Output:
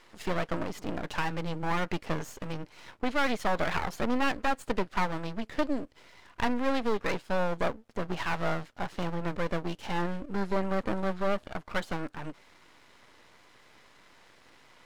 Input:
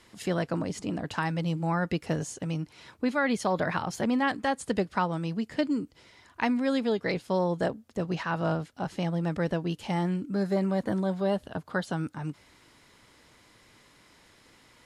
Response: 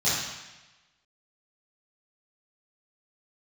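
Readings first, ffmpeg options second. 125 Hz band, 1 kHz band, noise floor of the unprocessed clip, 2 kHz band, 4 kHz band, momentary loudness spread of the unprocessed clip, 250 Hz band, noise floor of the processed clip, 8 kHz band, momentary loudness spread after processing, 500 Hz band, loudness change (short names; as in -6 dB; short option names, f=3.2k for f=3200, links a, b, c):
-6.0 dB, 0.0 dB, -60 dBFS, 0.0 dB, 0.0 dB, 7 LU, -5.0 dB, -59 dBFS, -4.5 dB, 8 LU, -2.5 dB, -2.5 dB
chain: -filter_complex "[0:a]asplit=2[a][b];[b]highpass=f=720:p=1,volume=13dB,asoftclip=type=tanh:threshold=-12.5dB[c];[a][c]amix=inputs=2:normalize=0,lowpass=f=1.6k:p=1,volume=-6dB,aeval=exprs='max(val(0),0)':c=same,volume=1.5dB"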